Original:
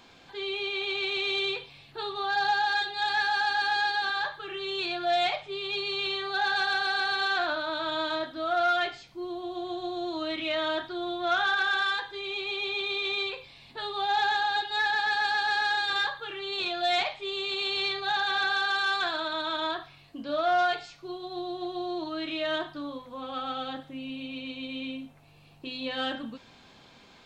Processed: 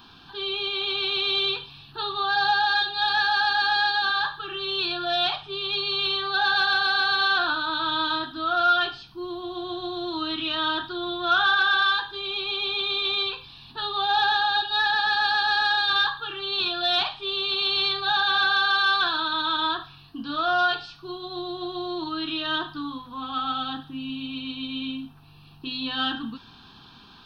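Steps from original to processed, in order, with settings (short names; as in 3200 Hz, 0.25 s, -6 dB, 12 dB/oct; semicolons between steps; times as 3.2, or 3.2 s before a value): fixed phaser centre 2100 Hz, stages 6; gain +7.5 dB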